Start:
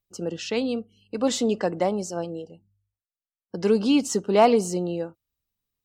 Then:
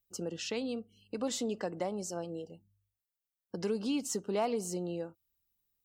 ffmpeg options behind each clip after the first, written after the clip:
-af "highshelf=f=9.9k:g=11,acompressor=threshold=-33dB:ratio=2,volume=-4dB"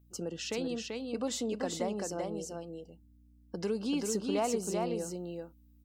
-af "aeval=exprs='val(0)+0.000891*(sin(2*PI*60*n/s)+sin(2*PI*2*60*n/s)/2+sin(2*PI*3*60*n/s)/3+sin(2*PI*4*60*n/s)/4+sin(2*PI*5*60*n/s)/5)':c=same,aecho=1:1:387:0.668"

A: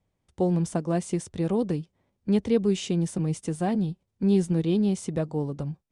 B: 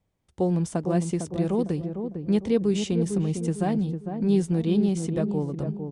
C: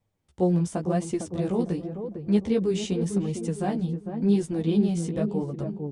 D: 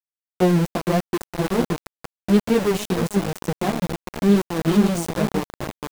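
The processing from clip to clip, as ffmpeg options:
-filter_complex "[0:a]asplit=2[a][b];[b]adelay=453,lowpass=f=820:p=1,volume=-6dB,asplit=2[c][d];[d]adelay=453,lowpass=f=820:p=1,volume=0.43,asplit=2[e][f];[f]adelay=453,lowpass=f=820:p=1,volume=0.43,asplit=2[g][h];[h]adelay=453,lowpass=f=820:p=1,volume=0.43,asplit=2[i][j];[j]adelay=453,lowpass=f=820:p=1,volume=0.43[k];[a][c][e][g][i][k]amix=inputs=6:normalize=0"
-af "flanger=delay=8.4:depth=9.1:regen=0:speed=0.9:shape=sinusoidal,volume=2dB"
-af "aeval=exprs='0.282*(cos(1*acos(clip(val(0)/0.282,-1,1)))-cos(1*PI/2))+0.00891*(cos(7*acos(clip(val(0)/0.282,-1,1)))-cos(7*PI/2))':c=same,aeval=exprs='val(0)*gte(abs(val(0)),0.0447)':c=same,volume=5.5dB"

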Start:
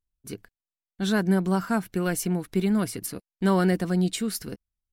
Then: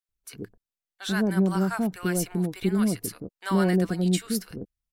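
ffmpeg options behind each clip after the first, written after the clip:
-filter_complex "[0:a]acrossover=split=750[a][b];[a]adelay=90[c];[c][b]amix=inputs=2:normalize=0"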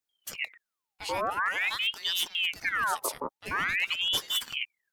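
-af "areverse,acompressor=threshold=-31dB:ratio=6,areverse,aeval=exprs='val(0)*sin(2*PI*2000*n/s+2000*0.65/0.47*sin(2*PI*0.47*n/s))':c=same,volume=7dB"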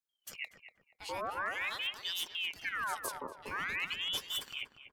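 -filter_complex "[0:a]asplit=2[a][b];[b]adelay=240,lowpass=f=1k:p=1,volume=-5dB,asplit=2[c][d];[d]adelay=240,lowpass=f=1k:p=1,volume=0.43,asplit=2[e][f];[f]adelay=240,lowpass=f=1k:p=1,volume=0.43,asplit=2[g][h];[h]adelay=240,lowpass=f=1k:p=1,volume=0.43,asplit=2[i][j];[j]adelay=240,lowpass=f=1k:p=1,volume=0.43[k];[a][c][e][g][i][k]amix=inputs=6:normalize=0,volume=-8dB"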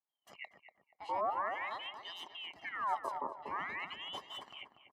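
-af "bandpass=f=590:t=q:w=1.9:csg=0,aecho=1:1:1:0.7,volume=8dB"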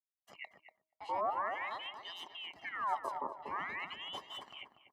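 -af "agate=range=-33dB:threshold=-59dB:ratio=3:detection=peak,bandreject=f=316.6:t=h:w=4,bandreject=f=633.2:t=h:w=4,bandreject=f=949.8:t=h:w=4"

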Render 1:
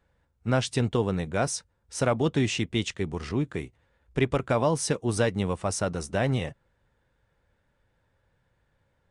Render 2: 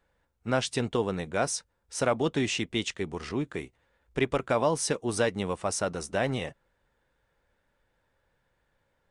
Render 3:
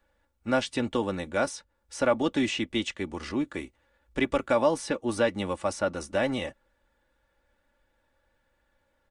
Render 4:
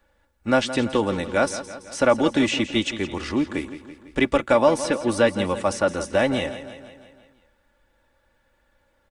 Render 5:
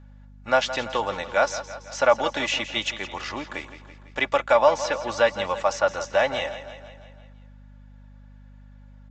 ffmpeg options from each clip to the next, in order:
-af "equalizer=f=98:t=o:w=2.1:g=-8.5"
-filter_complex "[0:a]aecho=1:1:3.5:0.59,acrossover=split=470|3700[a][b][c];[c]acompressor=threshold=-41dB:ratio=6[d];[a][b][d]amix=inputs=3:normalize=0"
-af "aecho=1:1:167|334|501|668|835|1002:0.224|0.128|0.0727|0.0415|0.0236|0.0135,volume=6dB"
-af "lowshelf=f=470:t=q:w=1.5:g=-12,aeval=exprs='val(0)+0.00501*(sin(2*PI*50*n/s)+sin(2*PI*2*50*n/s)/2+sin(2*PI*3*50*n/s)/3+sin(2*PI*4*50*n/s)/4+sin(2*PI*5*50*n/s)/5)':c=same,aresample=16000,aresample=44100"

